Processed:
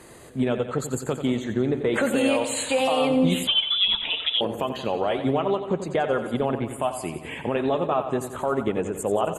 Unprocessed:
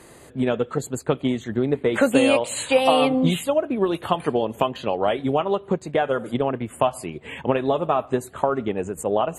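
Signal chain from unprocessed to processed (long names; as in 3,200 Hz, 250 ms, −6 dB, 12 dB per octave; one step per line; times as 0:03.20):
brickwall limiter −13.5 dBFS, peak gain reduction 9.5 dB
repeating echo 89 ms, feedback 59%, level −10 dB
0:03.47–0:04.41: voice inversion scrambler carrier 3,700 Hz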